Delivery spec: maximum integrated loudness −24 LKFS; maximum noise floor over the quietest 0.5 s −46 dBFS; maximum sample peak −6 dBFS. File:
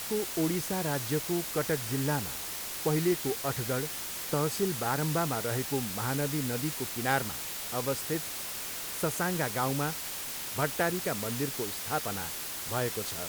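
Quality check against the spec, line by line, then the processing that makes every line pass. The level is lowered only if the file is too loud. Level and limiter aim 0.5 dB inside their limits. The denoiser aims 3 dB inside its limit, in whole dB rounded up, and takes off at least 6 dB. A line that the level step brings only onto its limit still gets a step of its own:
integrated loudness −31.0 LKFS: in spec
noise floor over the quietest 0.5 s −38 dBFS: out of spec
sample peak −12.0 dBFS: in spec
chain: broadband denoise 11 dB, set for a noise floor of −38 dBFS

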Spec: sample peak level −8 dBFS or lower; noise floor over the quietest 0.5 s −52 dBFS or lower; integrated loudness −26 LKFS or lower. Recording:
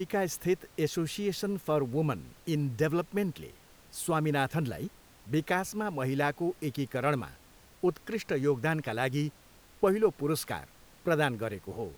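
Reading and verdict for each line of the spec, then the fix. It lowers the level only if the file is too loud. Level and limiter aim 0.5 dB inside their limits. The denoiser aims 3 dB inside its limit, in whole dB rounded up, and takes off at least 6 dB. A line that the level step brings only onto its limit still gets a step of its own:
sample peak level −13.0 dBFS: in spec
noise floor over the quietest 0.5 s −57 dBFS: in spec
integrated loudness −31.5 LKFS: in spec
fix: no processing needed

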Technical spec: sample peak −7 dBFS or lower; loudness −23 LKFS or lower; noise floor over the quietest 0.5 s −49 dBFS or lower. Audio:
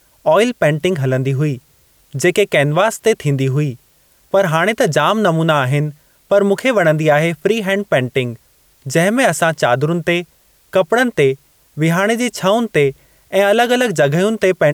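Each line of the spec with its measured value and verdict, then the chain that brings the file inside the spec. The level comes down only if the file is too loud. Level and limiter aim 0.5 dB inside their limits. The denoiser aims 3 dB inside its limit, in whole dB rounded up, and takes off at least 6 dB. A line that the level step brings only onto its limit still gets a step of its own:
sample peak −3.0 dBFS: out of spec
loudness −15.5 LKFS: out of spec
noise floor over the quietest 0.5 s −54 dBFS: in spec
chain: level −8 dB

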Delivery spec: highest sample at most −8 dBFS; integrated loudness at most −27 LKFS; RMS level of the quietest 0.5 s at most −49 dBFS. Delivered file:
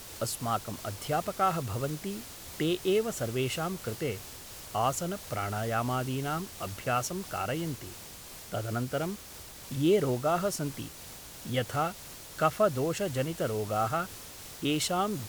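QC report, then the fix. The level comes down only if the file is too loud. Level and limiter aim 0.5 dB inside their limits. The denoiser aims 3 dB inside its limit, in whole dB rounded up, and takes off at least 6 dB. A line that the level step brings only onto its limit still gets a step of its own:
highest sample −12.5 dBFS: in spec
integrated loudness −31.5 LKFS: in spec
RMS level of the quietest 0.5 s −47 dBFS: out of spec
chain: broadband denoise 6 dB, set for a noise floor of −47 dBFS

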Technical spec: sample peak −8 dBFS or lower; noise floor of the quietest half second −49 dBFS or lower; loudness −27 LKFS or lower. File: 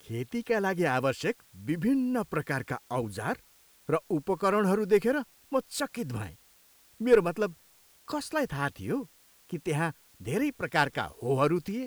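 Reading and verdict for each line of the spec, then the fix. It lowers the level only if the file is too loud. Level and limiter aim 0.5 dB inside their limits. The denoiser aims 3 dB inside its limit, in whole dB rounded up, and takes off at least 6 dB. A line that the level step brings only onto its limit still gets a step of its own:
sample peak −11.5 dBFS: in spec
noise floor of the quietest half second −61 dBFS: in spec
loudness −29.5 LKFS: in spec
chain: no processing needed

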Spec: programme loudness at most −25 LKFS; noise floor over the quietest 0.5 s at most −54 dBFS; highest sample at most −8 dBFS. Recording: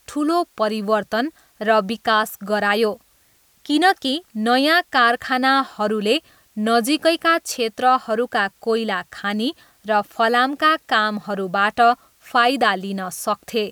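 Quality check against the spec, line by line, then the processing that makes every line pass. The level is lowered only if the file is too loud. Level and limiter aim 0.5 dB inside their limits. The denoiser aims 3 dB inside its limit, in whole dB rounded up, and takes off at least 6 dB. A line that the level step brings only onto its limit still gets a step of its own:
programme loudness −19.5 LKFS: out of spec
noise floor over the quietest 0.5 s −58 dBFS: in spec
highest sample −4.0 dBFS: out of spec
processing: level −6 dB

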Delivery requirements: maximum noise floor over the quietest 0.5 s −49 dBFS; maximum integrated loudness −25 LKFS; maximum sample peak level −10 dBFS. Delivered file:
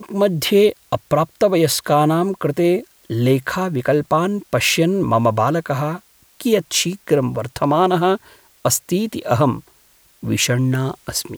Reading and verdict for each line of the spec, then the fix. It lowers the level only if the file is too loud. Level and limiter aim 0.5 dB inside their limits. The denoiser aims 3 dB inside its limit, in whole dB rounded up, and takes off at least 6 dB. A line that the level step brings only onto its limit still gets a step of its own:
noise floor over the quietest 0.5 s −54 dBFS: in spec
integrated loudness −18.5 LKFS: out of spec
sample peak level −4.5 dBFS: out of spec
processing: level −7 dB

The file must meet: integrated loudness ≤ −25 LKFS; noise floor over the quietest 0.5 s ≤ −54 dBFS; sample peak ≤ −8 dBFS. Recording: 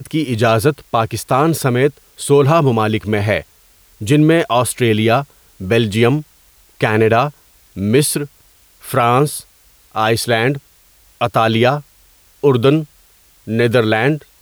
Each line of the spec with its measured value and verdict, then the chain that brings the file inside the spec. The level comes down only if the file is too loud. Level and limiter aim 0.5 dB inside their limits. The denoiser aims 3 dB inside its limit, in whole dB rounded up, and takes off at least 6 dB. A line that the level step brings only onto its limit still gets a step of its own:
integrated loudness −15.5 LKFS: out of spec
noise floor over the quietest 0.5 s −50 dBFS: out of spec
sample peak −3.0 dBFS: out of spec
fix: level −10 dB

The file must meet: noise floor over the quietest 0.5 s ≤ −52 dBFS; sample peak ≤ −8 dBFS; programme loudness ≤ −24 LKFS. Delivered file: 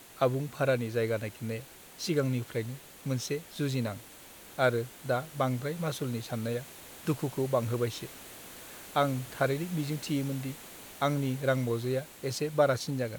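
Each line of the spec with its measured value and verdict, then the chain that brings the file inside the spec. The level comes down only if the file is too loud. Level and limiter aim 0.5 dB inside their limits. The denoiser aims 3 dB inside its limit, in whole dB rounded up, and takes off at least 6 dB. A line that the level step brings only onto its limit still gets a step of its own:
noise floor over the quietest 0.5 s −51 dBFS: out of spec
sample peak −12.5 dBFS: in spec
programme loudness −32.0 LKFS: in spec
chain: broadband denoise 6 dB, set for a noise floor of −51 dBFS

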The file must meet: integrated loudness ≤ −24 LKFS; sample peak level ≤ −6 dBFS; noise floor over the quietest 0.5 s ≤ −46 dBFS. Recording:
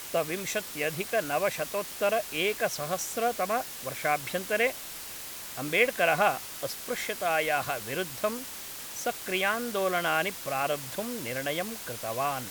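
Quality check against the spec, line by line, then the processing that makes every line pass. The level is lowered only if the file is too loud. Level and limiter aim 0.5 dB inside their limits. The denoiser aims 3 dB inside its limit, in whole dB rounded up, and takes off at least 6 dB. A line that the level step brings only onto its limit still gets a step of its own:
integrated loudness −29.5 LKFS: in spec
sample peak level −7.5 dBFS: in spec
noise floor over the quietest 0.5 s −41 dBFS: out of spec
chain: broadband denoise 8 dB, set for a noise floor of −41 dBFS

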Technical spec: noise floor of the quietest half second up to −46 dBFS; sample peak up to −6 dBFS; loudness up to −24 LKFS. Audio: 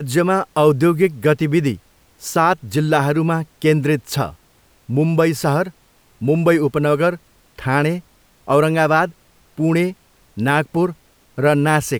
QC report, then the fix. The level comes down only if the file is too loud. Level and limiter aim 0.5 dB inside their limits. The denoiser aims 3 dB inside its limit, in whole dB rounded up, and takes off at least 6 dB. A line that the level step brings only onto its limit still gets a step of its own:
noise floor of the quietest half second −55 dBFS: in spec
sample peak −3.0 dBFS: out of spec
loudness −18.0 LKFS: out of spec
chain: level −6.5 dB

